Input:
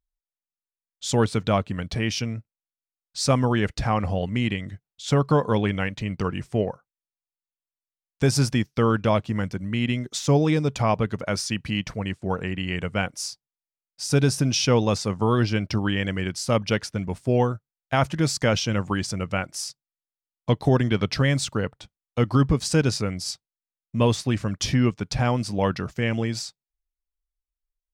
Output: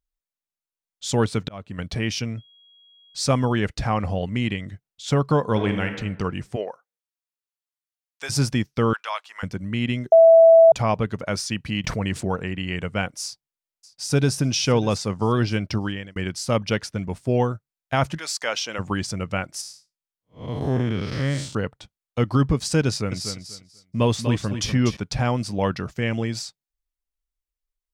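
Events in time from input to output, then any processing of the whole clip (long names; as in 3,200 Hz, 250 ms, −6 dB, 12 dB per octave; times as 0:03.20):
0:01.16–0:01.79: volume swells 442 ms
0:02.37–0:03.53: steady tone 3,300 Hz −52 dBFS
0:05.50–0:05.97: thrown reverb, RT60 0.97 s, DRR 5.5 dB
0:06.55–0:08.29: high-pass filter 480 Hz → 1,100 Hz
0:08.93–0:09.43: high-pass filter 920 Hz 24 dB per octave
0:10.12–0:10.72: beep over 658 Hz −7.5 dBFS
0:11.84–0:12.36: envelope flattener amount 70%
0:13.23–0:14.37: delay throw 600 ms, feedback 40%, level −18 dB
0:15.76–0:16.16: fade out
0:18.17–0:18.78: high-pass filter 1,100 Hz → 470 Hz
0:19.61–0:21.55: spectrum smeared in time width 169 ms
0:22.87–0:24.97: repeating echo 244 ms, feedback 20%, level −8 dB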